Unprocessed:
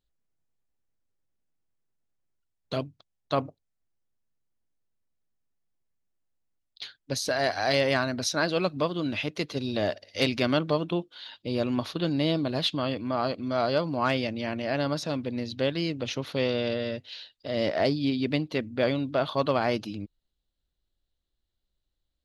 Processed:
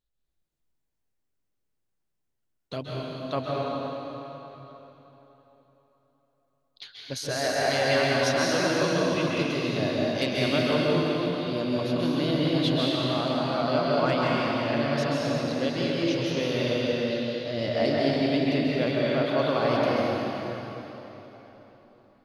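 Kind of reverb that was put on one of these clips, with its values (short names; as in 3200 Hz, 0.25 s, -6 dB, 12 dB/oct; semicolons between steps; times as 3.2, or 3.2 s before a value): plate-style reverb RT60 3.8 s, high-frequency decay 0.85×, pre-delay 0.12 s, DRR -5.5 dB; gain -4 dB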